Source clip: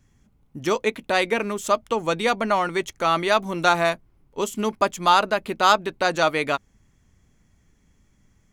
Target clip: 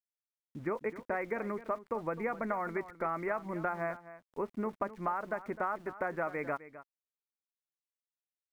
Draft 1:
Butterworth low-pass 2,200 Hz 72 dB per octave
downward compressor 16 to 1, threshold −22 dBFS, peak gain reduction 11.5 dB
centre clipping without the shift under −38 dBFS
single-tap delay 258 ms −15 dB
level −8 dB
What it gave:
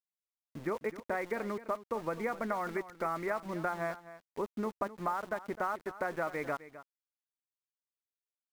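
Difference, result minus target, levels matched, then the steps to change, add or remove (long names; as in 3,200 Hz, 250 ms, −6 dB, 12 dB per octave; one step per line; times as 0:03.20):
centre clipping without the shift: distortion +10 dB
change: centre clipping without the shift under −47.5 dBFS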